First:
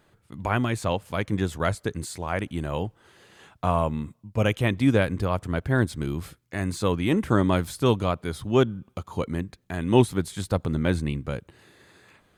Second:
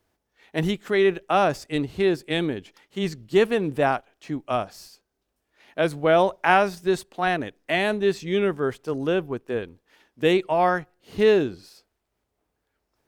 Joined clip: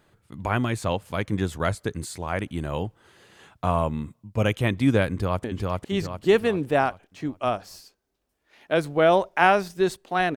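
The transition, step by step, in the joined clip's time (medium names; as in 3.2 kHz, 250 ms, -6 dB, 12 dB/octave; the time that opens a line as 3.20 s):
first
5.11–5.44 s: echo throw 400 ms, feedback 45%, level -2 dB
5.44 s: go over to second from 2.51 s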